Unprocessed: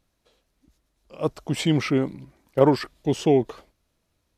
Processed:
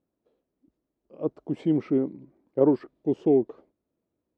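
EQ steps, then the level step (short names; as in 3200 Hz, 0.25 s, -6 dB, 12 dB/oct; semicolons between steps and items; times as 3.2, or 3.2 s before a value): band-pass 330 Hz, Q 1.4; 0.0 dB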